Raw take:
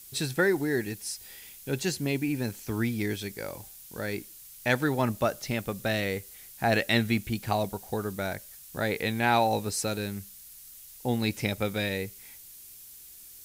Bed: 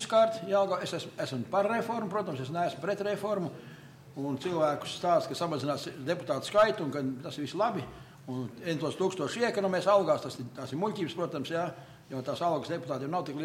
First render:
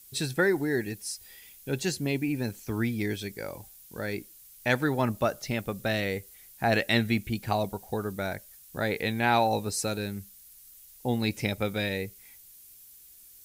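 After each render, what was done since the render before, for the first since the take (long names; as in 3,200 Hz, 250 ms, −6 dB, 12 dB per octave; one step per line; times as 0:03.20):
broadband denoise 6 dB, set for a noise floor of −49 dBFS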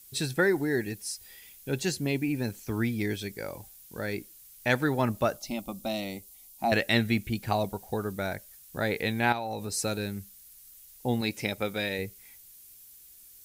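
0:05.37–0:06.72: phaser with its sweep stopped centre 450 Hz, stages 6
0:09.32–0:09.72: downward compressor, threshold −30 dBFS
0:11.21–0:11.99: low-shelf EQ 130 Hz −11.5 dB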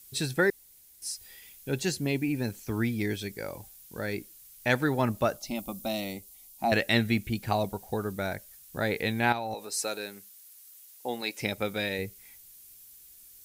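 0:00.50–0:01.02: fill with room tone
0:05.55–0:06.13: high-shelf EQ 10,000 Hz +7 dB
0:09.54–0:11.41: high-pass filter 420 Hz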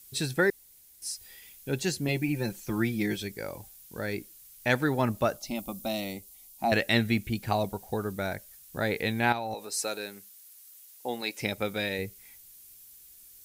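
0:02.08–0:03.22: comb filter 5.7 ms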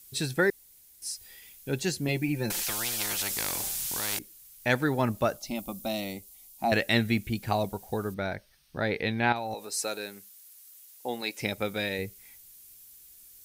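0:02.50–0:04.19: every bin compressed towards the loudest bin 10 to 1
0:08.14–0:09.36: Savitzky-Golay smoothing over 15 samples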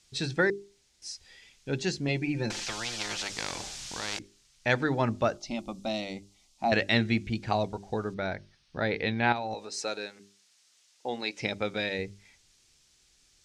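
low-pass filter 6,400 Hz 24 dB per octave
mains-hum notches 50/100/150/200/250/300/350/400 Hz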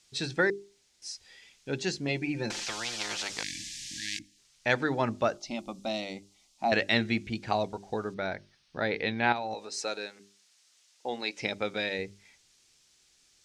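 0:03.43–0:04.38: time-frequency box erased 330–1,600 Hz
low-shelf EQ 120 Hz −10.5 dB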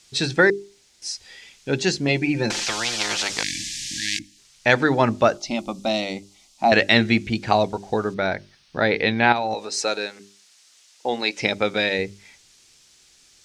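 level +10 dB
brickwall limiter −3 dBFS, peak gain reduction 2 dB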